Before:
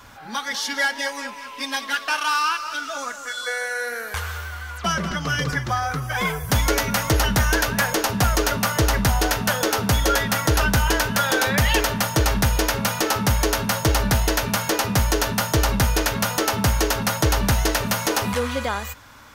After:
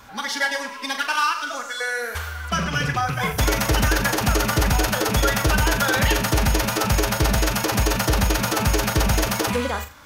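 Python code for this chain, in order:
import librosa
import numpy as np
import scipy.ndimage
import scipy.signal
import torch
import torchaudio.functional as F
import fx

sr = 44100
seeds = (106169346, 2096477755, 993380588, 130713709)

y = fx.rattle_buzz(x, sr, strikes_db=-26.0, level_db=-21.0)
y = fx.stretch_vocoder(y, sr, factor=0.52)
y = fx.room_flutter(y, sr, wall_m=7.1, rt60_s=0.27)
y = y * librosa.db_to_amplitude(1.0)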